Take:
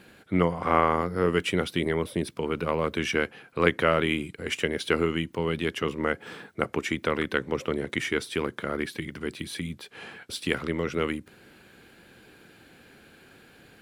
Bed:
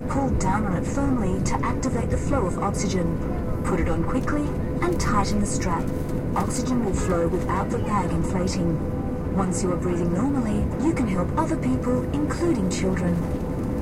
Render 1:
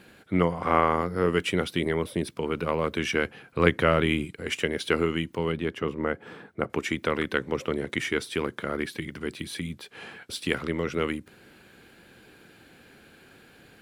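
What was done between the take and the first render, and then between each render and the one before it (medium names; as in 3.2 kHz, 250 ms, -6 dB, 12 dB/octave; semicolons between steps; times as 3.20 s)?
3.24–4.25 s: bass shelf 150 Hz +8.5 dB; 5.52–6.70 s: treble shelf 2.5 kHz -11.5 dB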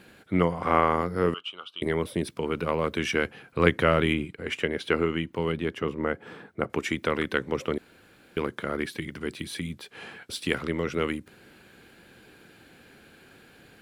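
1.34–1.82 s: two resonant band-passes 1.9 kHz, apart 1.3 oct; 4.13–5.36 s: tone controls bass -1 dB, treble -9 dB; 7.78–8.37 s: room tone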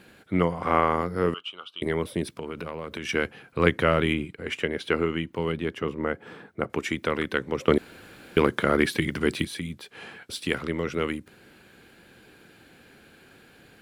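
2.30–3.09 s: compression 10:1, threshold -29 dBFS; 7.68–9.45 s: gain +8.5 dB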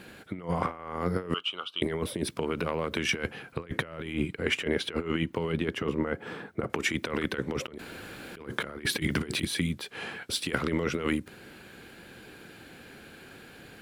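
compressor with a negative ratio -29 dBFS, ratio -0.5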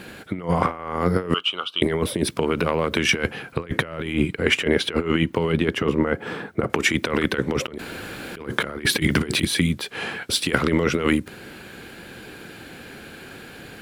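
trim +8.5 dB; peak limiter -1 dBFS, peak gain reduction 1 dB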